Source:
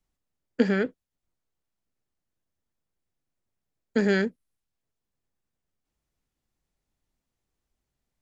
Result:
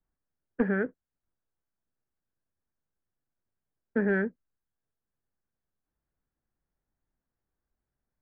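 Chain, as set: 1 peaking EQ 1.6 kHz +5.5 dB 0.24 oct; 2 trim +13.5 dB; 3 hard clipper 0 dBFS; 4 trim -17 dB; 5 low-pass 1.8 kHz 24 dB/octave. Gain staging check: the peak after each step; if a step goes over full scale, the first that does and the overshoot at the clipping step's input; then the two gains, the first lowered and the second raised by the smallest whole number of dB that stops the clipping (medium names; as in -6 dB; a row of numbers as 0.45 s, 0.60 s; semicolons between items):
-8.5 dBFS, +5.0 dBFS, 0.0 dBFS, -17.0 dBFS, -16.5 dBFS; step 2, 5.0 dB; step 2 +8.5 dB, step 4 -12 dB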